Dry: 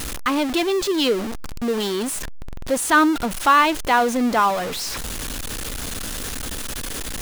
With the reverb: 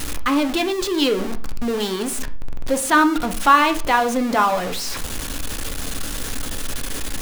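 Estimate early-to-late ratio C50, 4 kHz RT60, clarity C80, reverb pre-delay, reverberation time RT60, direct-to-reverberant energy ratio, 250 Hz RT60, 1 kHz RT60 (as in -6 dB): 14.5 dB, 0.40 s, 19.0 dB, 4 ms, 0.45 s, 7.0 dB, 0.55 s, 0.40 s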